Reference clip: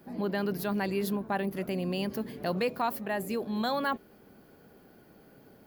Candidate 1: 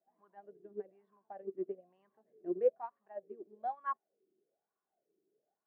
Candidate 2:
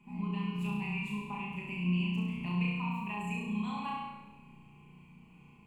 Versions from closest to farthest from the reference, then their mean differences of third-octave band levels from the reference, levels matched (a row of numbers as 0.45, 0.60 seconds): 2, 1; 9.5, 17.5 decibels